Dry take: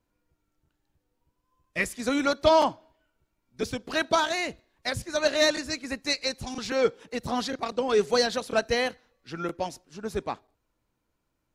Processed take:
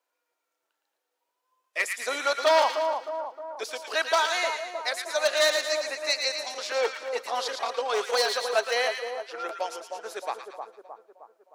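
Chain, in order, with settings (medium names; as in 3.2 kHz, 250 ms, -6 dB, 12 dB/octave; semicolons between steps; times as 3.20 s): one-sided wavefolder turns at -16.5 dBFS; high-pass 510 Hz 24 dB/octave; two-band feedback delay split 1.2 kHz, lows 310 ms, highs 113 ms, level -6 dB; trim +1 dB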